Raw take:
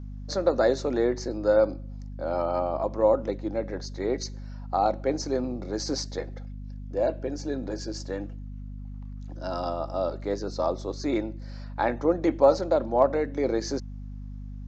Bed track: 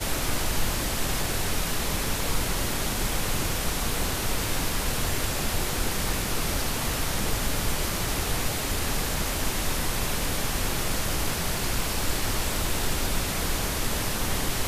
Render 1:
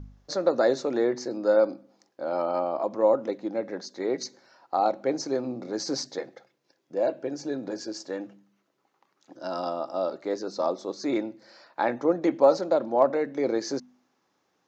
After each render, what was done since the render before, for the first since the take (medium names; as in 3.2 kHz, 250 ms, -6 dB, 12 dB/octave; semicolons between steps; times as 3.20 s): de-hum 50 Hz, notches 5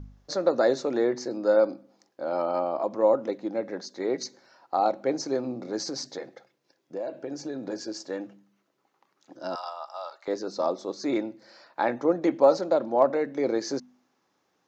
5.83–7.64 s: compression, threshold -29 dBFS; 9.55–10.28 s: Chebyshev high-pass 880 Hz, order 3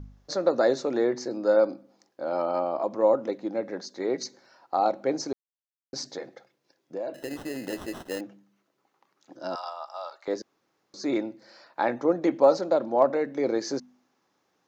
5.33–5.93 s: mute; 7.14–8.21 s: sample-rate reducer 2.3 kHz; 10.42–10.94 s: room tone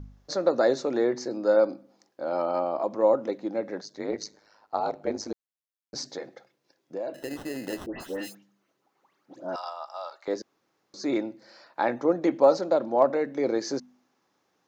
3.81–5.95 s: ring modulator 52 Hz; 7.86–9.56 s: phase dispersion highs, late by 144 ms, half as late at 2 kHz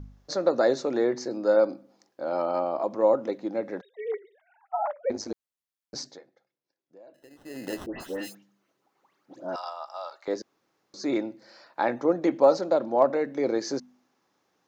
3.81–5.10 s: formants replaced by sine waves; 5.95–7.68 s: dip -17.5 dB, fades 0.28 s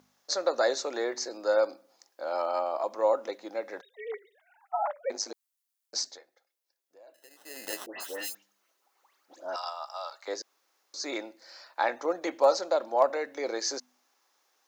high-pass 610 Hz 12 dB/octave; treble shelf 4.7 kHz +10.5 dB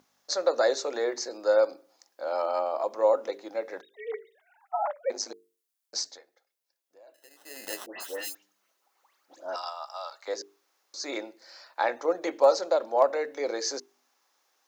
hum notches 50/100/150/200/250/300/350/400/450 Hz; dynamic bell 470 Hz, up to +4 dB, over -40 dBFS, Q 2.2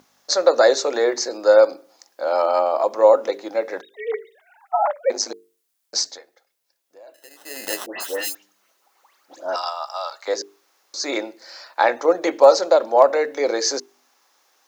trim +9.5 dB; peak limiter -1 dBFS, peak gain reduction 2 dB